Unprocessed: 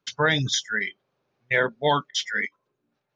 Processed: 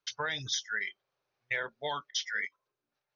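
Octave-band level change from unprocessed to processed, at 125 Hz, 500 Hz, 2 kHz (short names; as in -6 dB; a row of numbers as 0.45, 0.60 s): -18.0, -15.0, -9.0 dB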